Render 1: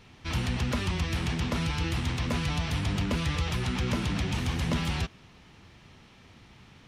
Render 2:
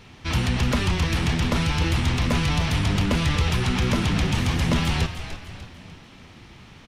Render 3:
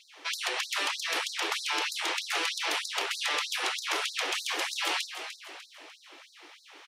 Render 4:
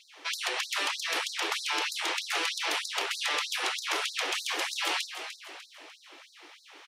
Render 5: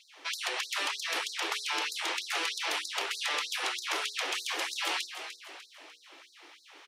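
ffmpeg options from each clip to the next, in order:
-filter_complex "[0:a]asplit=6[a][b][c][d][e][f];[b]adelay=298,afreqshift=-83,volume=-10dB[g];[c]adelay=596,afreqshift=-166,volume=-17.1dB[h];[d]adelay=894,afreqshift=-249,volume=-24.3dB[i];[e]adelay=1192,afreqshift=-332,volume=-31.4dB[j];[f]adelay=1490,afreqshift=-415,volume=-38.5dB[k];[a][g][h][i][j][k]amix=inputs=6:normalize=0,volume=6.5dB"
-af "afftfilt=real='re*lt(hypot(re,im),0.178)':imag='im*lt(hypot(re,im),0.178)':win_size=1024:overlap=0.75,afftfilt=real='re*gte(b*sr/1024,260*pow(3900/260,0.5+0.5*sin(2*PI*3.2*pts/sr)))':imag='im*gte(b*sr/1024,260*pow(3900/260,0.5+0.5*sin(2*PI*3.2*pts/sr)))':win_size=1024:overlap=0.75"
-af anull
-af "bandreject=f=60:t=h:w=6,bandreject=f=120:t=h:w=6,bandreject=f=180:t=h:w=6,bandreject=f=240:t=h:w=6,bandreject=f=300:t=h:w=6,bandreject=f=360:t=h:w=6,bandreject=f=420:t=h:w=6,bandreject=f=480:t=h:w=6,volume=-2dB"

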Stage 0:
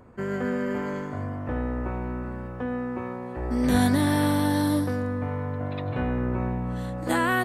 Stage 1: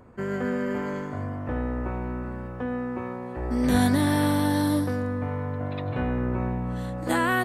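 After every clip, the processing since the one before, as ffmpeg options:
-af anull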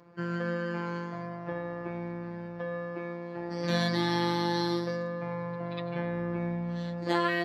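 -af "highshelf=f=7k:t=q:w=3:g=-13.5,afftfilt=real='hypot(re,im)*cos(PI*b)':imag='0':win_size=1024:overlap=0.75,highpass=85"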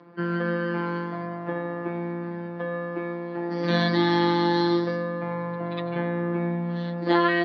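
-af "highpass=f=160:w=0.5412,highpass=f=160:w=1.3066,equalizer=f=300:t=q:w=4:g=5,equalizer=f=560:t=q:w=4:g=-3,equalizer=f=2.5k:t=q:w=4:g=-4,lowpass=f=4.1k:w=0.5412,lowpass=f=4.1k:w=1.3066,volume=6.5dB"

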